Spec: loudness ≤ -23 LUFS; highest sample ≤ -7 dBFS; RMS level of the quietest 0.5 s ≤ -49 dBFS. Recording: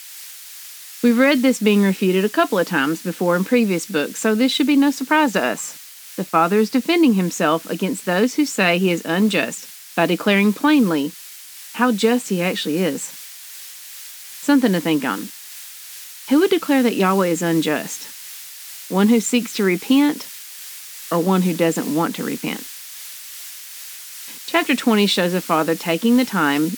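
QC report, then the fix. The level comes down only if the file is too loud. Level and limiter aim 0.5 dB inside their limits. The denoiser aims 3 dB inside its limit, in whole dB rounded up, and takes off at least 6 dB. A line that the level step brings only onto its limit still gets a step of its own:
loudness -18.5 LUFS: fail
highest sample -2.0 dBFS: fail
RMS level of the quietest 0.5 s -39 dBFS: fail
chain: noise reduction 8 dB, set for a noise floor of -39 dBFS; trim -5 dB; peak limiter -7.5 dBFS

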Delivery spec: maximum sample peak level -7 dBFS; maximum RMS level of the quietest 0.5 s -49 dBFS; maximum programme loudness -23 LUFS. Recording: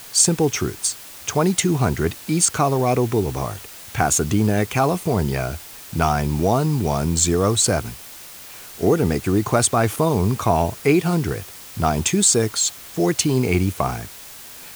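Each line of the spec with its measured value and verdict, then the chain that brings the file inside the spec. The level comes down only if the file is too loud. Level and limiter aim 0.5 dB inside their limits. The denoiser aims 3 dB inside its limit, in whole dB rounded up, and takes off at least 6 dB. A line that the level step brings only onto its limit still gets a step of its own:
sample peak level -3.0 dBFS: fail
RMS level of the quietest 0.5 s -39 dBFS: fail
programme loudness -20.0 LUFS: fail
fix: noise reduction 10 dB, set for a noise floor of -39 dBFS; trim -3.5 dB; peak limiter -7.5 dBFS

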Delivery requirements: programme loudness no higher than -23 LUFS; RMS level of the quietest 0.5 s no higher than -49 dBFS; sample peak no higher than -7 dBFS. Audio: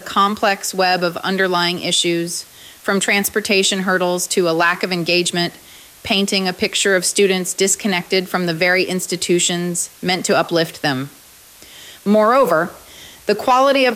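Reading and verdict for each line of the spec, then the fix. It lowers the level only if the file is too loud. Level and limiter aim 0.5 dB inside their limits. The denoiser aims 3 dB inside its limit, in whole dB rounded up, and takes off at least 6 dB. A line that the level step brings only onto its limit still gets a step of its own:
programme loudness -16.5 LUFS: fail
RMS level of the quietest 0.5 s -44 dBFS: fail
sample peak -5.0 dBFS: fail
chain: trim -7 dB

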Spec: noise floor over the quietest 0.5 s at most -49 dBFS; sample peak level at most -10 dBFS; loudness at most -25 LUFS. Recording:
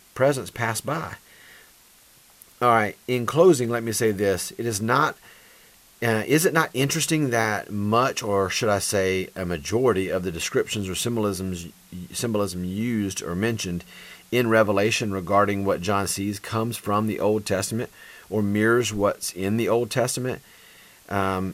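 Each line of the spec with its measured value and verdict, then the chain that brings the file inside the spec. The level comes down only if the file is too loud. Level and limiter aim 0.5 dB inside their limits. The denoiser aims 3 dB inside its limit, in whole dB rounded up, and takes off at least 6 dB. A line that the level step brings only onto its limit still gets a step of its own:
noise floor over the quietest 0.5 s -54 dBFS: pass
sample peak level -5.5 dBFS: fail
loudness -23.5 LUFS: fail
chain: trim -2 dB; peak limiter -10.5 dBFS

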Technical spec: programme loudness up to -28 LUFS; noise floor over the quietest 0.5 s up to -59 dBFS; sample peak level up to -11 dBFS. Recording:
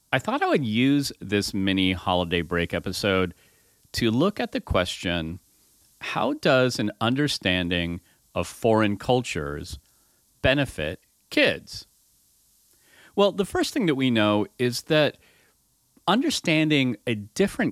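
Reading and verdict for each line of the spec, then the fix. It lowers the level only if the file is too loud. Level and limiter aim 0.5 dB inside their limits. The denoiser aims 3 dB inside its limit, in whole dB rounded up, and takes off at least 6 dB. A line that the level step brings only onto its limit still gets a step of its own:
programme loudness -24.0 LUFS: fail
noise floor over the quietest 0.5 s -65 dBFS: pass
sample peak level -6.0 dBFS: fail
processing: trim -4.5 dB; peak limiter -11.5 dBFS

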